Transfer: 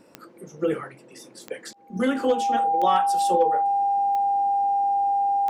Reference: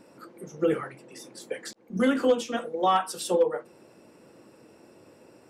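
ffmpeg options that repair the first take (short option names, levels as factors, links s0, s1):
-af "adeclick=t=4,bandreject=f=800:w=30"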